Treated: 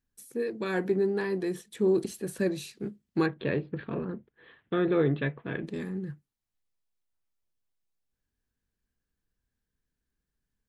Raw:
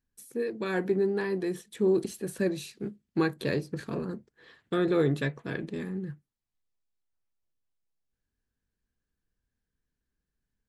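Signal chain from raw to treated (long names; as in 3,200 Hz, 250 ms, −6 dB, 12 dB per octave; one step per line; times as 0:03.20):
0:03.26–0:05.64: Butterworth low-pass 3,500 Hz 48 dB per octave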